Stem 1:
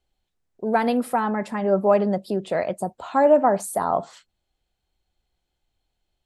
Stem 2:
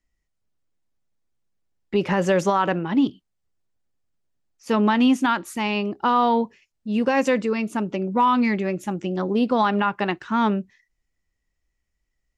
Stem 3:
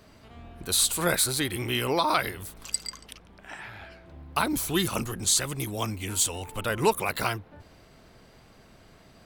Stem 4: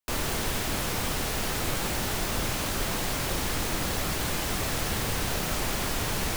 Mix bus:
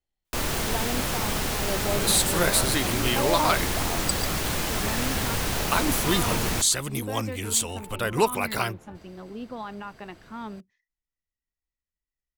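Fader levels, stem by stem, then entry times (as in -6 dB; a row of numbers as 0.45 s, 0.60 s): -12.5 dB, -16.5 dB, +1.0 dB, +2.0 dB; 0.00 s, 0.00 s, 1.35 s, 0.25 s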